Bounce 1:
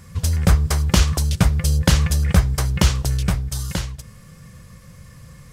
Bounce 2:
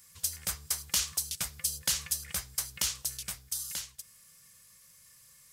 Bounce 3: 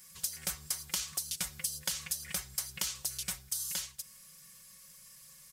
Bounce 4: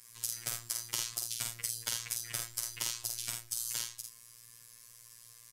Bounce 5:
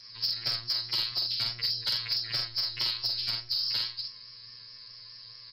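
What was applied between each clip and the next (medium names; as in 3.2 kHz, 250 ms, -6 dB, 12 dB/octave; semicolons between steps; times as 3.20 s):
pre-emphasis filter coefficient 0.97; trim -2.5 dB
comb 5.4 ms, depth 81%; compression 10:1, threshold -32 dBFS, peak gain reduction 11 dB; trim +1 dB
early reflections 49 ms -3.5 dB, 79 ms -9.5 dB; frequency shift -21 Hz; robot voice 117 Hz
knee-point frequency compression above 3.8 kHz 4:1; in parallel at -7.5 dB: sine folder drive 8 dB, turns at -17.5 dBFS; on the sum: vibrato 4.7 Hz 42 cents; trim -2.5 dB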